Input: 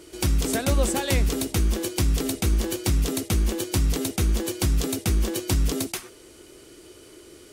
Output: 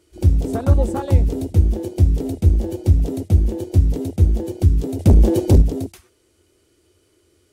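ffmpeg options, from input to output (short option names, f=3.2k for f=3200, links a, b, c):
-filter_complex "[0:a]equalizer=f=86:w=3.2:g=14.5,afwtdn=0.0501,asettb=1/sr,asplit=3[a][b][c];[a]atrim=end=4.994[d];[b]atrim=start=4.99:end=5.62,asetpts=PTS-STARTPTS,afade=t=in:d=0.004:c=qsin,afade=t=out:st=0.626:d=0.004:c=qsin,aeval=exprs='0.473*(cos(1*acos(clip(val(0)/0.473,-1,1)))-cos(1*PI/2))+0.188*(cos(5*acos(clip(val(0)/0.473,-1,1)))-cos(5*PI/2))':c=same[e];[c]atrim=start=5.616[f];[d][e]acrossfade=d=0.004:c1=hsin:c2=qsin[g];[g][f]acrossfade=d=0.004:c1=qsin:c2=hsin,volume=3dB"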